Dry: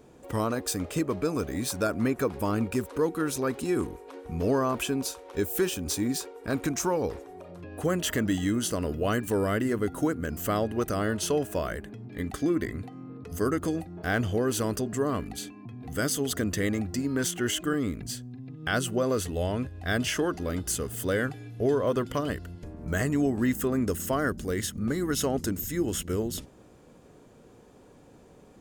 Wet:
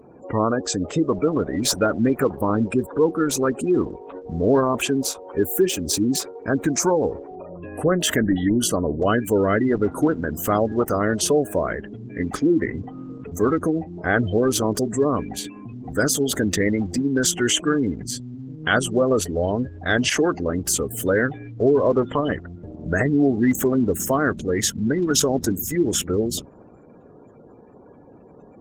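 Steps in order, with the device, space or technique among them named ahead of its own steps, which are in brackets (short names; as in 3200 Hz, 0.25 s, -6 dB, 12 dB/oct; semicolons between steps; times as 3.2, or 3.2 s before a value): 10.98–12.03 dynamic EQ 9000 Hz, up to +5 dB, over -49 dBFS, Q 5.2; noise-suppressed video call (HPF 130 Hz 6 dB/oct; spectral gate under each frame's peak -20 dB strong; gain +8.5 dB; Opus 16 kbps 48000 Hz)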